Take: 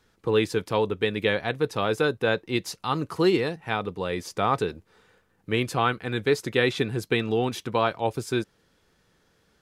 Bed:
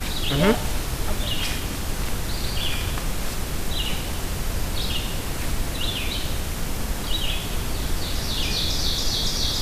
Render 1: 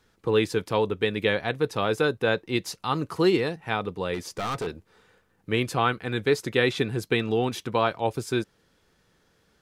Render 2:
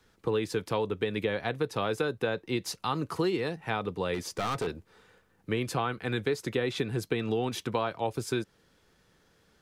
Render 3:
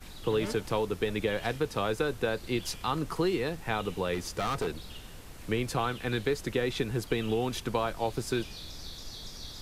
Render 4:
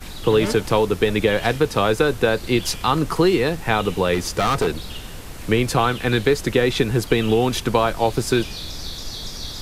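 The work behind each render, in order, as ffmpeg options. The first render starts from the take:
ffmpeg -i in.wav -filter_complex "[0:a]asettb=1/sr,asplit=3[link_01][link_02][link_03];[link_01]atrim=end=4.144[link_04];[link_02]atrim=start=4.14:end=4.67,asetpts=PTS-STARTPTS,afade=type=in:duration=0.004:curve=qsin,afade=type=out:start_time=0.526:duration=0.004:curve=qsin,asoftclip=type=hard:threshold=-26.5dB[link_05];[link_03]atrim=start=4.666[link_06];[link_04][link_05]acrossfade=duration=0.004:curve1=hsin:curve2=qsin[link_07];[link_07][link_06]acrossfade=duration=0.004:curve1=qsin:curve2=hsin" out.wav
ffmpeg -i in.wav -filter_complex "[0:a]acrossover=split=150|1200[link_01][link_02][link_03];[link_03]alimiter=limit=-20.5dB:level=0:latency=1[link_04];[link_01][link_02][link_04]amix=inputs=3:normalize=0,acompressor=threshold=-26dB:ratio=4" out.wav
ffmpeg -i in.wav -i bed.wav -filter_complex "[1:a]volume=-19.5dB[link_01];[0:a][link_01]amix=inputs=2:normalize=0" out.wav
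ffmpeg -i in.wav -af "volume=11.5dB" out.wav

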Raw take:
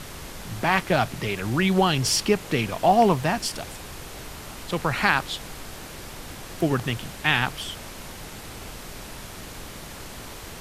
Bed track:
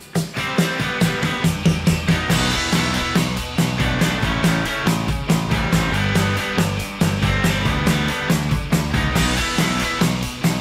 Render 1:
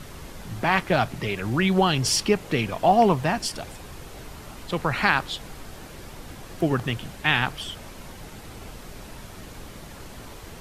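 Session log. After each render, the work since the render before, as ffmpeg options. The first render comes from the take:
ffmpeg -i in.wav -af "afftdn=noise_reduction=6:noise_floor=-40" out.wav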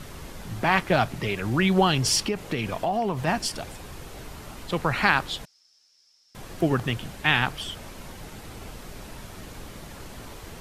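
ffmpeg -i in.wav -filter_complex "[0:a]asplit=3[link_01][link_02][link_03];[link_01]afade=type=out:start_time=2.24:duration=0.02[link_04];[link_02]acompressor=threshold=-22dB:ratio=5:attack=3.2:release=140:knee=1:detection=peak,afade=type=in:start_time=2.24:duration=0.02,afade=type=out:start_time=3.26:duration=0.02[link_05];[link_03]afade=type=in:start_time=3.26:duration=0.02[link_06];[link_04][link_05][link_06]amix=inputs=3:normalize=0,asettb=1/sr,asplit=3[link_07][link_08][link_09];[link_07]atrim=end=5.454[link_10];[link_08]atrim=start=5.45:end=6.35,asetpts=PTS-STARTPTS,afade=type=in:duration=0.004:curve=qsin,afade=type=out:start_time=0.896:duration=0.004:curve=qsin,bandpass=frequency=5300:width_type=q:width=13[link_11];[link_09]atrim=start=6.346[link_12];[link_10][link_11]acrossfade=duration=0.004:curve1=hsin:curve2=qsin[link_13];[link_13][link_12]acrossfade=duration=0.004:curve1=qsin:curve2=hsin" out.wav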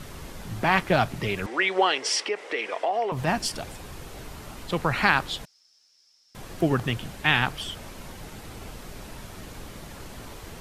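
ffmpeg -i in.wav -filter_complex "[0:a]asettb=1/sr,asplit=3[link_01][link_02][link_03];[link_01]atrim=end=1.464[link_04];[link_02]atrim=start=1.46:end=3.12,asetpts=PTS-STARTPTS,afade=type=in:duration=0.004:curve=qsin,afade=type=out:start_time=1.656:duration=0.004:curve=qsin,highpass=frequency=380:width=0.5412,highpass=frequency=380:width=1.3066,equalizer=frequency=470:width_type=q:width=4:gain=4,equalizer=frequency=2000:width_type=q:width=4:gain=8,equalizer=frequency=4300:width_type=q:width=4:gain=-4,equalizer=frequency=6800:width_type=q:width=4:gain=-6,lowpass=frequency=8000:width=0.5412,lowpass=frequency=8000:width=1.3066[link_05];[link_03]atrim=start=3.116[link_06];[link_04][link_05]acrossfade=duration=0.004:curve1=hsin:curve2=qsin[link_07];[link_07][link_06]acrossfade=duration=0.004:curve1=qsin:curve2=hsin" out.wav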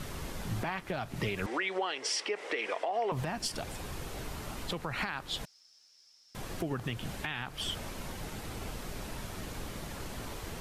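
ffmpeg -i in.wav -af "acompressor=threshold=-28dB:ratio=3,alimiter=limit=-22.5dB:level=0:latency=1:release=202" out.wav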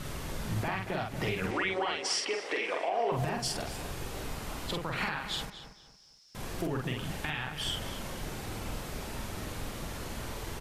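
ffmpeg -i in.wav -filter_complex "[0:a]asplit=2[link_01][link_02];[link_02]adelay=47,volume=-3dB[link_03];[link_01][link_03]amix=inputs=2:normalize=0,asplit=2[link_04][link_05];[link_05]adelay=231,lowpass=frequency=3200:poles=1,volume=-10dB,asplit=2[link_06][link_07];[link_07]adelay=231,lowpass=frequency=3200:poles=1,volume=0.33,asplit=2[link_08][link_09];[link_09]adelay=231,lowpass=frequency=3200:poles=1,volume=0.33,asplit=2[link_10][link_11];[link_11]adelay=231,lowpass=frequency=3200:poles=1,volume=0.33[link_12];[link_04][link_06][link_08][link_10][link_12]amix=inputs=5:normalize=0" out.wav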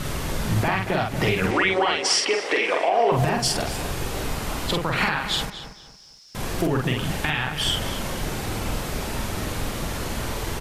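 ffmpeg -i in.wav -af "volume=10.5dB" out.wav

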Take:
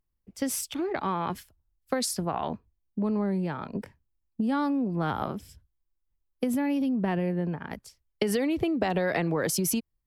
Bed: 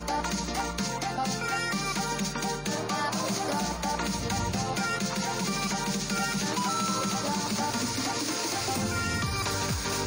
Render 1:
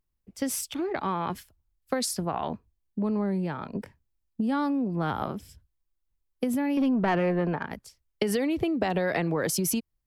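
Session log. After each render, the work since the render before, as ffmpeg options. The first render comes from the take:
ffmpeg -i in.wav -filter_complex "[0:a]asettb=1/sr,asplit=3[link_01][link_02][link_03];[link_01]atrim=end=6.774[link_04];[link_02]atrim=start=6.77:end=7.65,asetpts=PTS-STARTPTS,afade=type=in:duration=0.004:curve=qsin,afade=type=out:start_time=0.876:duration=0.004:curve=qsin,asplit=2[link_05][link_06];[link_06]highpass=frequency=720:poles=1,volume=19dB,asoftclip=type=tanh:threshold=-14.5dB[link_07];[link_05][link_07]amix=inputs=2:normalize=0,lowpass=frequency=1800:poles=1,volume=-6dB[link_08];[link_03]atrim=start=7.646[link_09];[link_04][link_08]acrossfade=duration=0.004:curve1=hsin:curve2=qsin[link_10];[link_10][link_09]acrossfade=duration=0.004:curve1=qsin:curve2=hsin" out.wav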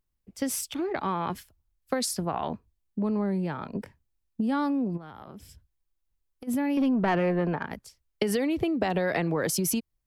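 ffmpeg -i in.wav -filter_complex "[0:a]asplit=3[link_01][link_02][link_03];[link_01]afade=type=out:start_time=4.96:duration=0.02[link_04];[link_02]acompressor=threshold=-39dB:ratio=20:attack=3.2:release=140:knee=1:detection=peak,afade=type=in:start_time=4.96:duration=0.02,afade=type=out:start_time=6.47:duration=0.02[link_05];[link_03]afade=type=in:start_time=6.47:duration=0.02[link_06];[link_04][link_05][link_06]amix=inputs=3:normalize=0" out.wav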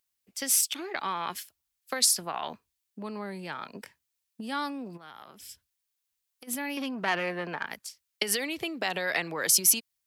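ffmpeg -i in.wav -af "highpass=frequency=250:poles=1,tiltshelf=frequency=1200:gain=-9" out.wav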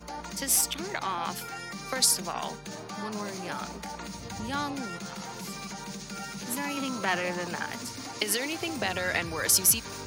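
ffmpeg -i in.wav -i bed.wav -filter_complex "[1:a]volume=-9.5dB[link_01];[0:a][link_01]amix=inputs=2:normalize=0" out.wav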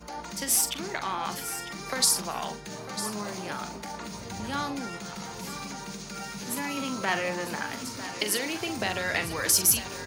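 ffmpeg -i in.wav -filter_complex "[0:a]asplit=2[link_01][link_02];[link_02]adelay=43,volume=-10dB[link_03];[link_01][link_03]amix=inputs=2:normalize=0,aecho=1:1:950:0.237" out.wav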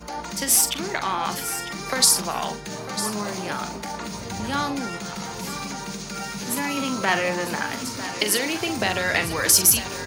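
ffmpeg -i in.wav -af "volume=6dB,alimiter=limit=-3dB:level=0:latency=1" out.wav

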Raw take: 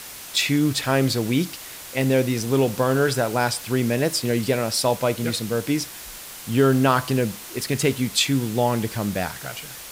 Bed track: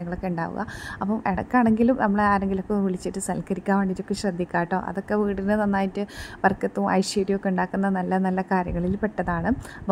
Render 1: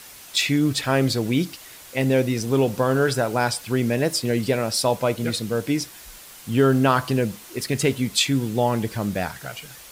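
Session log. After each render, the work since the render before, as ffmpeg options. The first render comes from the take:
ffmpeg -i in.wav -af "afftdn=noise_reduction=6:noise_floor=-38" out.wav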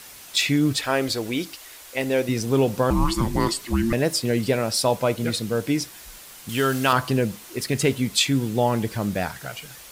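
ffmpeg -i in.wav -filter_complex "[0:a]asettb=1/sr,asplit=3[link_01][link_02][link_03];[link_01]atrim=end=0.764[link_04];[link_02]atrim=start=0.76:end=2.29,asetpts=PTS-STARTPTS,afade=type=in:duration=0.004:curve=qsin,afade=type=out:start_time=1.526:duration=0.004:curve=qsin,equalizer=frequency=150:width_type=o:width=1.3:gain=-13[link_05];[link_03]atrim=start=2.286[link_06];[link_04][link_05]acrossfade=duration=0.004:curve1=hsin:curve2=qsin[link_07];[link_07][link_06]acrossfade=duration=0.004:curve1=qsin:curve2=hsin,asettb=1/sr,asplit=3[link_08][link_09][link_10];[link_08]atrim=end=2.904[link_11];[link_09]atrim=start=2.9:end=3.93,asetpts=PTS-STARTPTS,afade=type=in:duration=0.004:curve=qsin,afade=type=out:start_time=1.026:duration=0.004:curve=qsin,afreqshift=-460[link_12];[link_10]atrim=start=3.926[link_13];[link_11][link_12]acrossfade=duration=0.004:curve1=hsin:curve2=qsin[link_14];[link_14][link_13]acrossfade=duration=0.004:curve1=qsin:curve2=hsin,asettb=1/sr,asplit=3[link_15][link_16][link_17];[link_15]atrim=end=6.494[link_18];[link_16]atrim=start=6.49:end=6.93,asetpts=PTS-STARTPTS,afade=type=in:duration=0.004:curve=qsin,afade=type=out:start_time=0.436:duration=0.004:curve=qsin,tiltshelf=frequency=1100:gain=-7.5[link_19];[link_17]atrim=start=6.926[link_20];[link_18][link_19]acrossfade=duration=0.004:curve1=hsin:curve2=qsin[link_21];[link_21][link_20]acrossfade=duration=0.004:curve1=qsin:curve2=hsin" out.wav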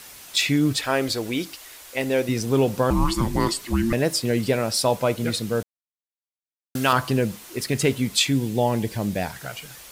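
ffmpeg -i in.wav -filter_complex "[0:a]asettb=1/sr,asplit=3[link_01][link_02][link_03];[link_01]atrim=end=8.314[link_04];[link_02]atrim=start=8.31:end=9.33,asetpts=PTS-STARTPTS,afade=type=in:duration=0.004:curve=qsin,afade=type=out:start_time=1.016:duration=0.004:curve=qsin,equalizer=frequency=1300:width=2.8:gain=-8.5[link_05];[link_03]atrim=start=9.326[link_06];[link_04][link_05]acrossfade=duration=0.004:curve1=hsin:curve2=qsin[link_07];[link_07][link_06]acrossfade=duration=0.004:curve1=qsin:curve2=hsin,asplit=3[link_08][link_09][link_10];[link_08]atrim=end=5.63,asetpts=PTS-STARTPTS,afade=type=out:start_time=5.626:duration=0.004:curve=hsin[link_11];[link_09]atrim=start=5.63:end=6.75,asetpts=PTS-STARTPTS,volume=0[link_12];[link_10]atrim=start=6.75,asetpts=PTS-STARTPTS,afade=type=in:duration=0.004:curve=hsin[link_13];[link_11][link_12][link_13]concat=n=3:v=0:a=1" out.wav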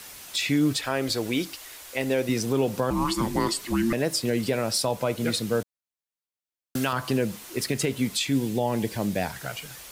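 ffmpeg -i in.wav -filter_complex "[0:a]acrossover=split=160[link_01][link_02];[link_01]acompressor=threshold=-36dB:ratio=6[link_03];[link_02]alimiter=limit=-15dB:level=0:latency=1:release=153[link_04];[link_03][link_04]amix=inputs=2:normalize=0" out.wav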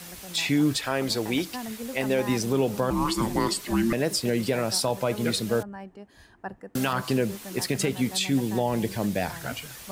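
ffmpeg -i in.wav -i bed.wav -filter_complex "[1:a]volume=-17dB[link_01];[0:a][link_01]amix=inputs=2:normalize=0" out.wav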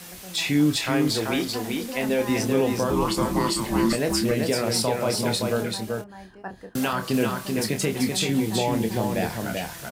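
ffmpeg -i in.wav -filter_complex "[0:a]asplit=2[link_01][link_02];[link_02]adelay=27,volume=-7dB[link_03];[link_01][link_03]amix=inputs=2:normalize=0,aecho=1:1:386:0.631" out.wav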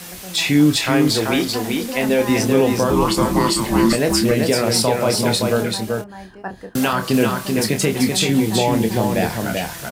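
ffmpeg -i in.wav -af "volume=6.5dB" out.wav

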